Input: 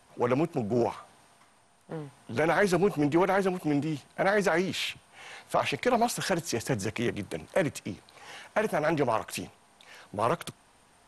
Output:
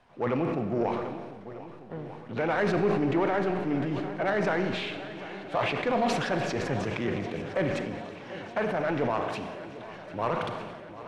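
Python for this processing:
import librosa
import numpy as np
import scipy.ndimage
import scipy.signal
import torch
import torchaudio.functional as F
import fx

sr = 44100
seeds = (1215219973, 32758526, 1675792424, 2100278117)

p1 = scipy.signal.sosfilt(scipy.signal.butter(2, 3100.0, 'lowpass', fs=sr, output='sos'), x)
p2 = 10.0 ** (-25.0 / 20.0) * np.tanh(p1 / 10.0 ** (-25.0 / 20.0))
p3 = p1 + (p2 * 10.0 ** (-4.0 / 20.0))
p4 = fx.echo_swing(p3, sr, ms=1245, ratio=1.5, feedback_pct=63, wet_db=-16.0)
p5 = fx.rev_schroeder(p4, sr, rt60_s=1.9, comb_ms=30, drr_db=7.5)
p6 = fx.sustainer(p5, sr, db_per_s=34.0)
y = p6 * 10.0 ** (-5.5 / 20.0)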